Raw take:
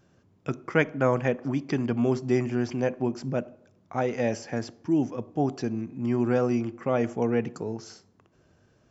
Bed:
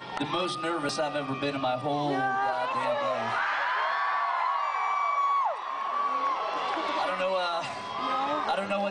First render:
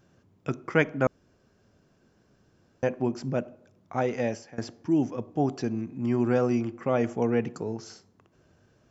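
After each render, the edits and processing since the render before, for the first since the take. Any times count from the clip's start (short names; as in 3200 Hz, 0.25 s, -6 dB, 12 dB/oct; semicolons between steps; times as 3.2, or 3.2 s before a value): 1.07–2.83 room tone; 4.01–4.58 fade out equal-power, to -21.5 dB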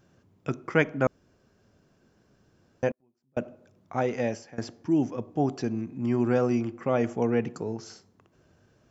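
2.91–3.37 flipped gate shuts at -30 dBFS, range -41 dB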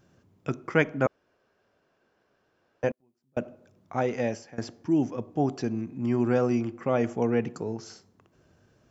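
1.06–2.84 three-band isolator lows -16 dB, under 400 Hz, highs -14 dB, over 4000 Hz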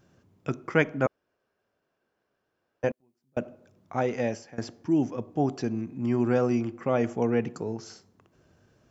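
1.01–2.84 upward expander, over -36 dBFS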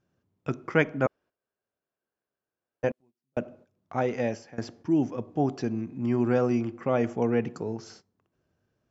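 Bessel low-pass 6300 Hz; gate -52 dBFS, range -13 dB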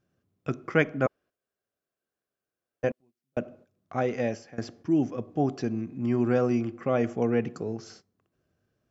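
notch 910 Hz, Q 6.8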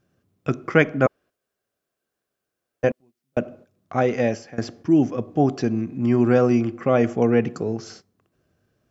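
gain +7 dB; limiter -2 dBFS, peak gain reduction 1.5 dB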